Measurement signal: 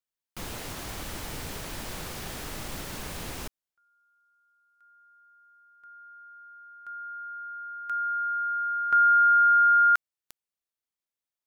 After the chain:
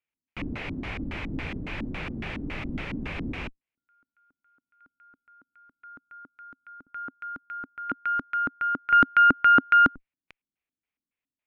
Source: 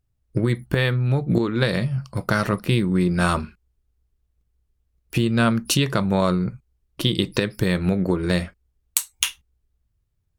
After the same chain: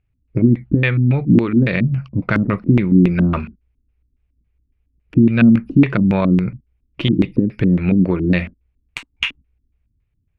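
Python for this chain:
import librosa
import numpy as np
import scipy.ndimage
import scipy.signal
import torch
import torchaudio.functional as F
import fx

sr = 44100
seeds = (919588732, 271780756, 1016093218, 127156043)

y = fx.cheby_harmonics(x, sr, harmonics=(5, 6), levels_db=(-26, -29), full_scale_db=-1.0)
y = fx.filter_lfo_lowpass(y, sr, shape='square', hz=3.6, low_hz=270.0, high_hz=2400.0, q=4.2)
y = fx.low_shelf(y, sr, hz=430.0, db=5.0)
y = y * librosa.db_to_amplitude(-2.5)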